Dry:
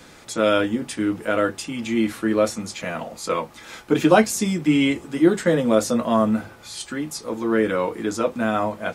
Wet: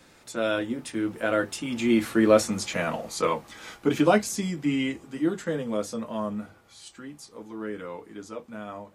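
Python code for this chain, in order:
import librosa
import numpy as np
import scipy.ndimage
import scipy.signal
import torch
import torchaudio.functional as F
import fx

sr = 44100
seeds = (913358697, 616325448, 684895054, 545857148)

y = fx.doppler_pass(x, sr, speed_mps=14, closest_m=11.0, pass_at_s=2.53)
y = F.gain(torch.from_numpy(y), 1.5).numpy()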